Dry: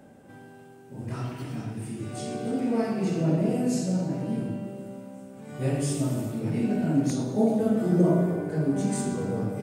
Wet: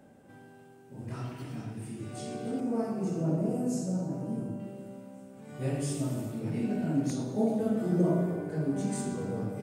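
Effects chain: 2.6–4.6 band shelf 2800 Hz -10 dB; gain -5 dB

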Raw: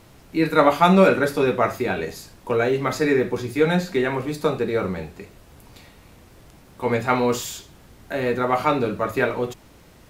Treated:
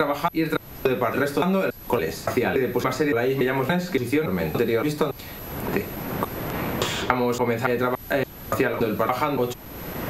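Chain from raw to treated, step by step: slices in reverse order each 0.284 s, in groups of 3; compressor, threshold -21 dBFS, peak gain reduction 11.5 dB; whine 12000 Hz -50 dBFS; three-band squash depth 100%; gain +2.5 dB

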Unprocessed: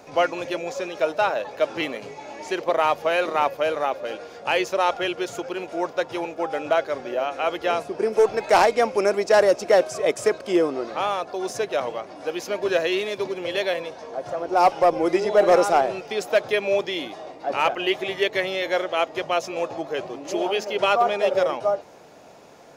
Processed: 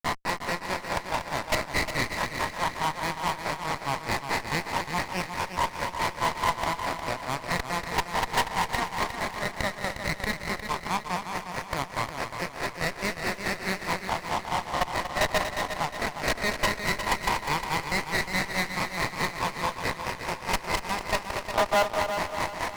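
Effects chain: spectral swells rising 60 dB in 2.14 s; recorder AGC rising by 22 dB/s; tilt shelf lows -8 dB, about 1300 Hz; limiter -10.5 dBFS, peak gain reduction 11.5 dB; level quantiser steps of 19 dB; double band-pass 1400 Hz, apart 0.96 oct; grains 0.175 s, grains 4.7/s, pitch spread up and down by 0 st; fuzz box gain 46 dB, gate -53 dBFS; multi-head echo 0.119 s, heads second and third, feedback 51%, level -8.5 dB; running maximum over 9 samples; gain -5.5 dB

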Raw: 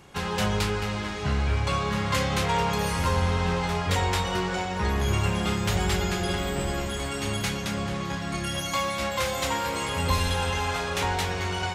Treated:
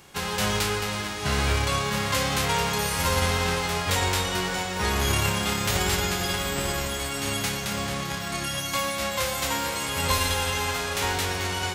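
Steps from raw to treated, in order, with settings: spectral whitening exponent 0.6; on a send: reverb RT60 0.40 s, pre-delay 0.101 s, DRR 14 dB

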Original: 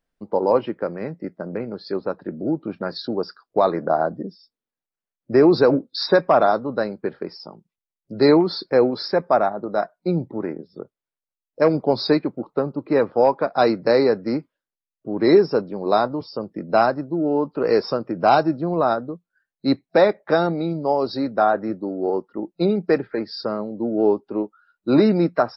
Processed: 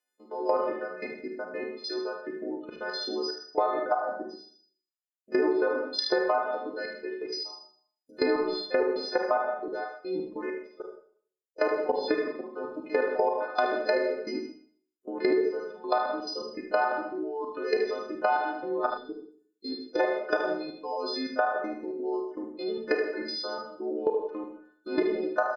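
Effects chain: frequency quantiser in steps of 3 st; reverb removal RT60 1.5 s; Chebyshev high-pass 320 Hz, order 3; level quantiser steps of 17 dB; treble ducked by the level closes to 1900 Hz, closed at -19.5 dBFS; Schroeder reverb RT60 0.53 s, combs from 31 ms, DRR 2.5 dB; spectral gain 18.9–20, 510–3100 Hz -15 dB; on a send: echo 75 ms -6.5 dB; on the sum: compressor 6:1, threshold -22 dBFS, peak gain reduction 10.5 dB

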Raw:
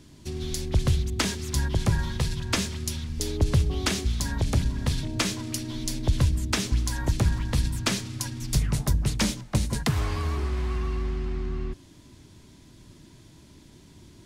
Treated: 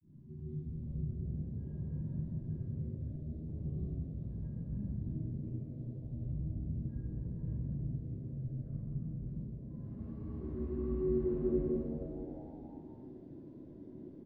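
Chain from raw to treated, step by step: tilt +4.5 dB/oct; compressor 2.5:1, threshold -32 dBFS, peak gain reduction 13 dB; limiter -32 dBFS, peak gain reduction 21.5 dB; grains, pitch spread up and down by 0 st; low-pass sweep 160 Hz -> 320 Hz, 8.98–11.27; frequency-shifting echo 0.218 s, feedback 61%, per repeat +90 Hz, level -15.5 dB; reverb RT60 1.6 s, pre-delay 10 ms, DRR -10.5 dB; gain -6.5 dB

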